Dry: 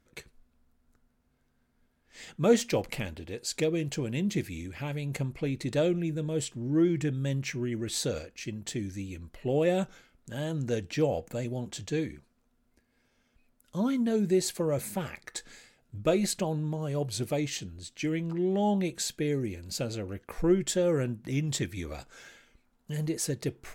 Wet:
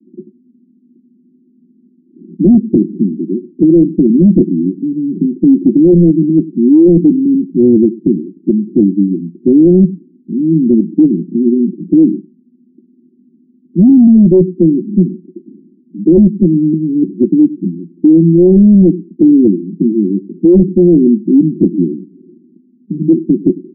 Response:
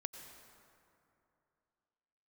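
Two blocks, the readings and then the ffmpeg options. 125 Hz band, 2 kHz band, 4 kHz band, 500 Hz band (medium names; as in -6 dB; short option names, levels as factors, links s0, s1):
+16.5 dB, under -35 dB, under -40 dB, +15.5 dB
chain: -af "asuperpass=centerf=250:order=20:qfactor=1.2,aecho=1:1:99:0.106,apsyclip=29.9,volume=0.841"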